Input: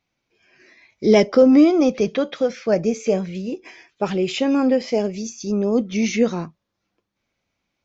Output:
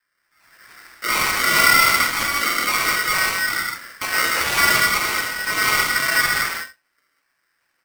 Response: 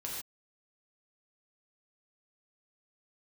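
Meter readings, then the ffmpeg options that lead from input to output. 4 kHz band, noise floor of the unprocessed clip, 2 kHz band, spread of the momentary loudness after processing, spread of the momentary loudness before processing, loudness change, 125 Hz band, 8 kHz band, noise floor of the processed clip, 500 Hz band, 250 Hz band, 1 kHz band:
+12.0 dB, −78 dBFS, +17.5 dB, 11 LU, 15 LU, +2.0 dB, −6.5 dB, can't be measured, −71 dBFS, −14.5 dB, −18.5 dB, +11.0 dB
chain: -filter_complex "[0:a]lowpass=frequency=1200:poles=1,tiltshelf=frequency=940:gain=-5,asplit=2[link_01][link_02];[link_02]acompressor=threshold=-31dB:ratio=6,volume=-1.5dB[link_03];[link_01][link_03]amix=inputs=2:normalize=0,alimiter=limit=-15.5dB:level=0:latency=1,aecho=1:1:84:0.0668,acrusher=samples=37:mix=1:aa=0.000001:lfo=1:lforange=37:lforate=2.2[link_04];[1:a]atrim=start_sample=2205,asetrate=30429,aresample=44100[link_05];[link_04][link_05]afir=irnorm=-1:irlink=0,aeval=exprs='val(0)*sgn(sin(2*PI*1700*n/s))':channel_layout=same,volume=1.5dB"

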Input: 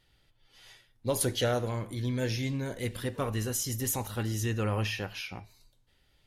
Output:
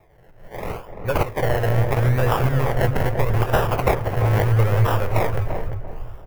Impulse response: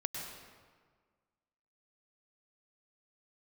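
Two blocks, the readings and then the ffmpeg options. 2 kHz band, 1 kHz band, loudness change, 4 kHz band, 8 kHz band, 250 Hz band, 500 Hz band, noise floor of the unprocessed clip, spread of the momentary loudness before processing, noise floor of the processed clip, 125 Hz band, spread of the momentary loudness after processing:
+11.0 dB, +16.0 dB, +11.0 dB, +1.0 dB, −7.0 dB, +6.0 dB, +11.5 dB, −69 dBFS, 7 LU, −48 dBFS, +14.0 dB, 14 LU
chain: -filter_complex "[0:a]acrossover=split=260|720|2500[link_01][link_02][link_03][link_04];[link_03]aeval=exprs='max(val(0),0)':channel_layout=same[link_05];[link_01][link_02][link_05][link_04]amix=inputs=4:normalize=0,crystalizer=i=4.5:c=0,dynaudnorm=framelen=130:gausssize=5:maxgain=11.5dB,asubboost=boost=9:cutoff=65,acrusher=samples=29:mix=1:aa=0.000001:lfo=1:lforange=17.4:lforate=0.77,acompressor=threshold=-23dB:ratio=6,equalizer=frequency=125:width_type=o:width=1:gain=5,equalizer=frequency=250:width_type=o:width=1:gain=-11,equalizer=frequency=500:width_type=o:width=1:gain=4,equalizer=frequency=2000:width_type=o:width=1:gain=3,equalizer=frequency=4000:width_type=o:width=1:gain=-9,equalizer=frequency=8000:width_type=o:width=1:gain=-10,asplit=2[link_06][link_07];[link_07]adelay=342,lowpass=frequency=930:poles=1,volume=-5.5dB,asplit=2[link_08][link_09];[link_09]adelay=342,lowpass=frequency=930:poles=1,volume=0.33,asplit=2[link_10][link_11];[link_11]adelay=342,lowpass=frequency=930:poles=1,volume=0.33,asplit=2[link_12][link_13];[link_13]adelay=342,lowpass=frequency=930:poles=1,volume=0.33[link_14];[link_06][link_08][link_10][link_12][link_14]amix=inputs=5:normalize=0,volume=6.5dB"

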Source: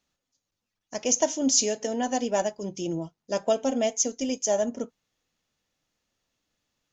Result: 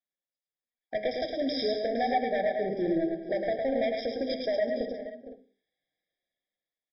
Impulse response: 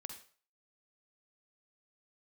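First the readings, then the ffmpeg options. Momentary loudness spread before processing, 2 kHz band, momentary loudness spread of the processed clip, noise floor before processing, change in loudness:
11 LU, +2.5 dB, 9 LU, −85 dBFS, −3.5 dB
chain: -filter_complex "[0:a]afwtdn=0.0126,lowshelf=frequency=260:gain=-3.5,bandreject=frequency=50:width_type=h:width=6,bandreject=frequency=100:width_type=h:width=6,bandreject=frequency=150:width_type=h:width=6,bandreject=frequency=200:width_type=h:width=6,bandreject=frequency=250:width_type=h:width=6,bandreject=frequency=300:width_type=h:width=6,bandreject=frequency=350:width_type=h:width=6,bandreject=frequency=400:width_type=h:width=6,bandreject=frequency=450:width_type=h:width=6,acrossover=split=110|2400[link_01][link_02][link_03];[link_02]acompressor=threshold=-33dB:ratio=16[link_04];[link_01][link_04][link_03]amix=inputs=3:normalize=0,asplit=2[link_05][link_06];[link_06]highpass=frequency=720:poles=1,volume=14dB,asoftclip=type=tanh:threshold=-9dB[link_07];[link_05][link_07]amix=inputs=2:normalize=0,lowpass=frequency=3200:poles=1,volume=-6dB,dynaudnorm=framelen=120:gausssize=13:maxgain=11.5dB,flanger=delay=5.2:depth=4.2:regen=69:speed=0.47:shape=sinusoidal,asoftclip=type=hard:threshold=-22dB,aecho=1:1:107|195|248|462|512:0.596|0.168|0.211|0.211|0.158,asplit=2[link_08][link_09];[1:a]atrim=start_sample=2205[link_10];[link_09][link_10]afir=irnorm=-1:irlink=0,volume=-1.5dB[link_11];[link_08][link_11]amix=inputs=2:normalize=0,aresample=11025,aresample=44100,afftfilt=real='re*eq(mod(floor(b*sr/1024/790),2),0)':imag='im*eq(mod(floor(b*sr/1024/790),2),0)':win_size=1024:overlap=0.75,volume=-5.5dB"

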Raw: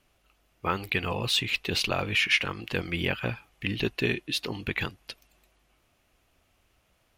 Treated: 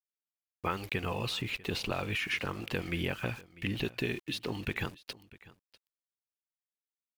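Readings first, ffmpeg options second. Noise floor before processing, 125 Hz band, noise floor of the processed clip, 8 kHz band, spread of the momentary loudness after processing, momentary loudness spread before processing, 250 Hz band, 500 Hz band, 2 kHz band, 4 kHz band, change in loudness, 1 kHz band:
−69 dBFS, −3.5 dB, below −85 dBFS, −9.0 dB, 6 LU, 10 LU, −3.5 dB, −4.5 dB, −7.5 dB, −9.0 dB, −6.5 dB, −4.5 dB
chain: -filter_complex "[0:a]acrossover=split=1500|7400[link_01][link_02][link_03];[link_01]acompressor=threshold=-31dB:ratio=4[link_04];[link_02]acompressor=threshold=-38dB:ratio=4[link_05];[link_03]acompressor=threshold=-53dB:ratio=4[link_06];[link_04][link_05][link_06]amix=inputs=3:normalize=0,aeval=exprs='val(0)*gte(abs(val(0)),0.00398)':channel_layout=same,aecho=1:1:646:0.0944"

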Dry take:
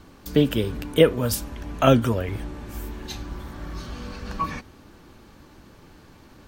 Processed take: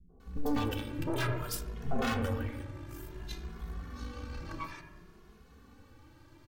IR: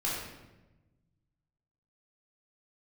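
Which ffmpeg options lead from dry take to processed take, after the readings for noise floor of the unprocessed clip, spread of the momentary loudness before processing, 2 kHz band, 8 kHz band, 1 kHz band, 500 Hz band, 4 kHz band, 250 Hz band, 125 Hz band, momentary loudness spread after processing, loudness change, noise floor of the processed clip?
−50 dBFS, 17 LU, −6.5 dB, −10.5 dB, −10.0 dB, −16.5 dB, −12.0 dB, −11.5 dB, −10.5 dB, 13 LU, −13.5 dB, −58 dBFS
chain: -filter_complex "[0:a]aeval=exprs='0.188*(abs(mod(val(0)/0.188+3,4)-2)-1)':channel_layout=same,acrossover=split=230|740[link_01][link_02][link_03];[link_02]adelay=90[link_04];[link_03]adelay=200[link_05];[link_01][link_04][link_05]amix=inputs=3:normalize=0,asplit=2[link_06][link_07];[1:a]atrim=start_sample=2205,lowpass=2200[link_08];[link_07][link_08]afir=irnorm=-1:irlink=0,volume=-9.5dB[link_09];[link_06][link_09]amix=inputs=2:normalize=0,aeval=exprs='(tanh(8.91*val(0)+0.65)-tanh(0.65))/8.91':channel_layout=same,asplit=2[link_10][link_11];[link_11]adelay=2.4,afreqshift=0.57[link_12];[link_10][link_12]amix=inputs=2:normalize=1,volume=-4dB"

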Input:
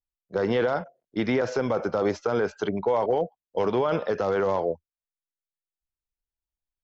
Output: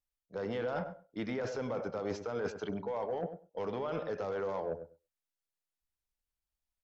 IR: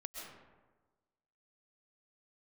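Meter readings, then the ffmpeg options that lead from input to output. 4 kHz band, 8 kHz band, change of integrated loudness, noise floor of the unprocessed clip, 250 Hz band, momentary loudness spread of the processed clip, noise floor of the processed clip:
−11.0 dB, can't be measured, −11.5 dB, below −85 dBFS, −11.0 dB, 6 LU, below −85 dBFS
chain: -filter_complex "[0:a]bandreject=frequency=370:width=12,areverse,acompressor=threshold=-32dB:ratio=10,areverse,asoftclip=type=tanh:threshold=-26dB,asplit=2[link_01][link_02];[link_02]adelay=99,lowpass=frequency=1100:poles=1,volume=-9dB,asplit=2[link_03][link_04];[link_04]adelay=99,lowpass=frequency=1100:poles=1,volume=0.15[link_05];[link_01][link_03][link_05]amix=inputs=3:normalize=0[link_06];[1:a]atrim=start_sample=2205,atrim=end_sample=4410,asetrate=32634,aresample=44100[link_07];[link_06][link_07]afir=irnorm=-1:irlink=0,volume=4dB"

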